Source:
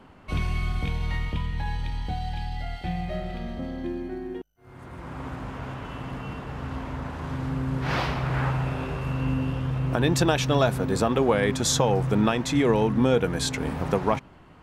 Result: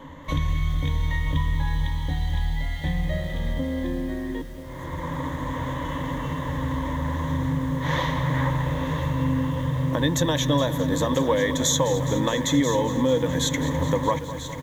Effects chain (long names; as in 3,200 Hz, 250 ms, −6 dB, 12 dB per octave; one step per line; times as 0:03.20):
EQ curve with evenly spaced ripples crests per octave 1.1, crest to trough 16 dB
downward compressor 2 to 1, threshold −33 dBFS, peak gain reduction 12 dB
on a send: single-tap delay 987 ms −12.5 dB
on the sum: feedback echo at a low word length 208 ms, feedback 80%, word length 8 bits, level −14 dB
level +6 dB